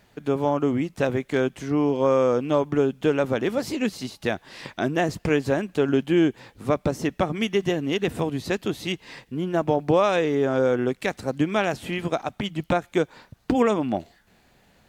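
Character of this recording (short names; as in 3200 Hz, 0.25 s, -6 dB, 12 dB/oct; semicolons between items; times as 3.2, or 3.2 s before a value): a quantiser's noise floor 12-bit, dither none; AAC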